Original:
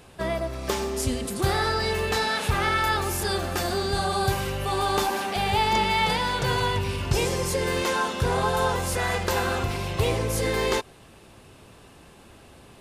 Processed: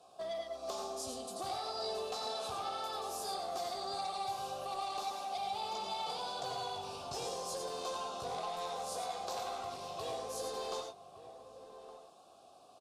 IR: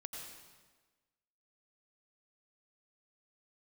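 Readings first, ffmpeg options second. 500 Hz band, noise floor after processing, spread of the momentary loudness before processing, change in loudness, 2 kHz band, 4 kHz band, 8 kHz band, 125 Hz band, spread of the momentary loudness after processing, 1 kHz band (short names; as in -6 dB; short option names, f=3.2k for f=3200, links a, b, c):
-13.5 dB, -59 dBFS, 5 LU, -14.5 dB, -24.0 dB, -12.5 dB, -13.0 dB, -29.5 dB, 10 LU, -12.0 dB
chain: -filter_complex "[0:a]asplit=3[a][b][c];[a]bandpass=f=730:t=q:w=8,volume=0dB[d];[b]bandpass=f=1.09k:t=q:w=8,volume=-6dB[e];[c]bandpass=f=2.44k:t=q:w=8,volume=-9dB[f];[d][e][f]amix=inputs=3:normalize=0,equalizer=f=2.7k:t=o:w=0.69:g=-12,acrossover=split=260|1100[g][h][i];[h]asoftclip=type=tanh:threshold=-37dB[j];[i]flanger=delay=15.5:depth=2.9:speed=1.7[k];[g][j][k]amix=inputs=3:normalize=0,highshelf=f=4.3k:g=-6.5,acompressor=threshold=-41dB:ratio=6,asplit=2[l][m];[m]adelay=1166,volume=-12dB,highshelf=f=4k:g=-26.2[n];[l][n]amix=inputs=2:normalize=0,aexciter=amount=11:drive=5.5:freq=3.3k[o];[1:a]atrim=start_sample=2205,afade=t=out:st=0.16:d=0.01,atrim=end_sample=7497[p];[o][p]afir=irnorm=-1:irlink=0,volume=8dB"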